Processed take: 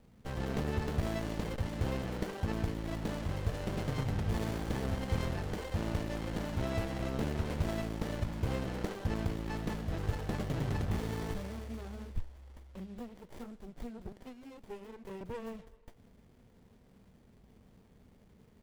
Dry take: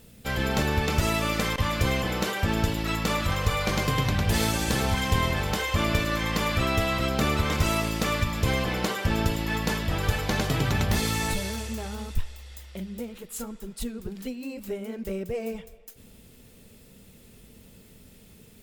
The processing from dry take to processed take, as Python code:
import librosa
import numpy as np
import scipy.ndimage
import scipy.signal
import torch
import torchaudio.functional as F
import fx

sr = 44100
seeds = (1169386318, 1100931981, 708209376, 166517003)

y = fx.highpass(x, sr, hz=390.0, slope=12, at=(14.12, 15.21))
y = fx.running_max(y, sr, window=33)
y = y * 10.0 ** (-8.0 / 20.0)